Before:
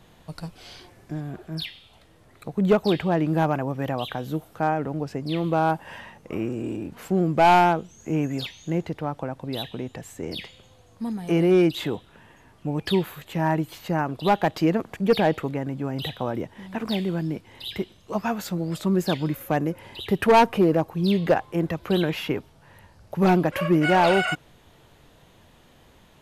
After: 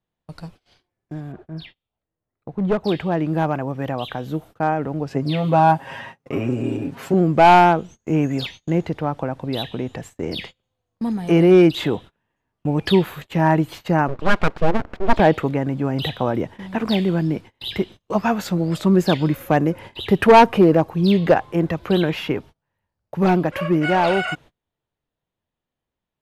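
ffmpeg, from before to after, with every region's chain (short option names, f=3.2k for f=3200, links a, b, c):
-filter_complex "[0:a]asettb=1/sr,asplit=3[a][b][c];[a]atrim=end=1.324[d];[b]atrim=start=1.32:end=2.84,asetpts=PTS-STARTPTS,afade=t=in:d=0.004:c=qsin,afade=t=out:st=1.516:d=0.004:c=qsin,lowpass=f=1.5k:p=1,aeval=exprs='clip(val(0),-1,0.126)':c=same[e];[c]atrim=start=2.836[f];[d][e]acrossfade=d=0.004:c1=hsin:c2=qsin[g];[g][f]acrossfade=d=0.004:c1=qsin:c2=hsin,asettb=1/sr,asplit=3[h][i][j];[h]atrim=end=5.104[k];[i]atrim=start=5.1:end=7.14,asetpts=PTS-STARTPTS,afade=t=in:d=0.004:c=qsin,afade=t=out:st=2.036:d=0.004:c=qsin,highpass=62,aecho=1:1:7.4:0.86,atrim=end_sample=89964[l];[j]atrim=start=7.136[m];[k][l]acrossfade=d=0.004:c1=hsin:c2=qsin[n];[n][m]acrossfade=d=0.004:c1=qsin:c2=hsin,asettb=1/sr,asplit=3[o][p][q];[o]atrim=end=14.084[r];[p]atrim=start=14.08:end=15.2,asetpts=PTS-STARTPTS,afade=t=in:d=0.004:c=qsin,afade=t=out:st=1.116:d=0.004:c=qsin,lowpass=1.4k,aeval=exprs='abs(val(0))':c=same[s];[q]atrim=start=15.196[t];[r][s]acrossfade=d=0.004:c1=hsin:c2=qsin[u];[u][t]acrossfade=d=0.004:c1=qsin:c2=hsin,agate=range=-30dB:threshold=-41dB:ratio=16:detection=peak,highshelf=f=7k:g=-8.5,dynaudnorm=f=560:g=17:m=7.5dB"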